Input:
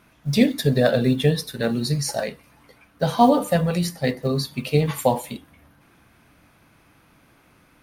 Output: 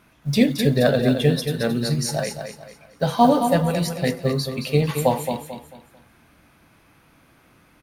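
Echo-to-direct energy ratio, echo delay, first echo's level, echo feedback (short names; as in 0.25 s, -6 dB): -7.0 dB, 0.221 s, -7.5 dB, 33%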